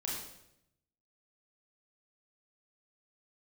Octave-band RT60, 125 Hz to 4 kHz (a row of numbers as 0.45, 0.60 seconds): 1.2, 0.95, 0.85, 0.75, 0.75, 0.70 seconds